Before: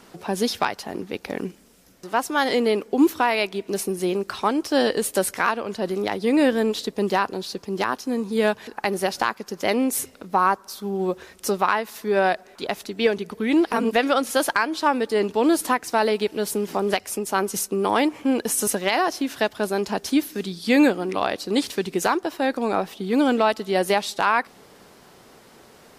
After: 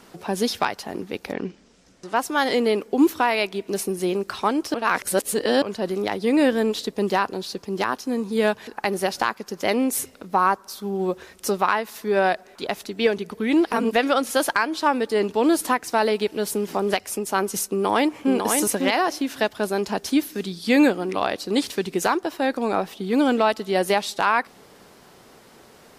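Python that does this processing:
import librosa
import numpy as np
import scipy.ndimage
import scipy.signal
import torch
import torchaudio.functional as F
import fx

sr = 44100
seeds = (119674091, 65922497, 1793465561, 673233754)

y = fx.lowpass(x, sr, hz=fx.line((1.32, 5000.0), (2.14, 10000.0)), slope=24, at=(1.32, 2.14), fade=0.02)
y = fx.echo_throw(y, sr, start_s=17.7, length_s=0.65, ms=550, feedback_pct=10, wet_db=-4.5)
y = fx.edit(y, sr, fx.reverse_span(start_s=4.74, length_s=0.88), tone=tone)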